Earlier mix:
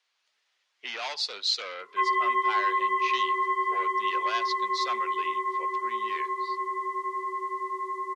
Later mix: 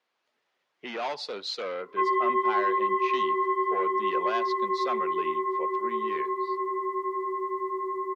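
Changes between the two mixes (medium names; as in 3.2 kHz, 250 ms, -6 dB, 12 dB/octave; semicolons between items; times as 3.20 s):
speech +3.0 dB; master: remove frequency weighting ITU-R 468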